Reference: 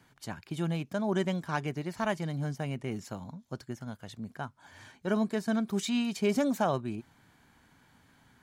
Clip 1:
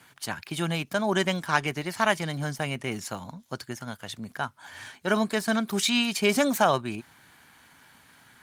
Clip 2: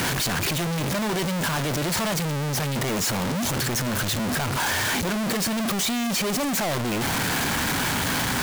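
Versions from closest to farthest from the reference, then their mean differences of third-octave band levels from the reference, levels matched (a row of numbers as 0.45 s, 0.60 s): 1, 2; 4.5 dB, 17.0 dB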